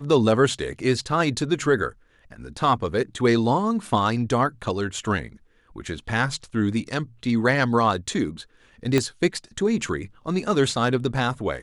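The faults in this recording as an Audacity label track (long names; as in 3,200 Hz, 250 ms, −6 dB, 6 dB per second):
8.980000	8.980000	click −7 dBFS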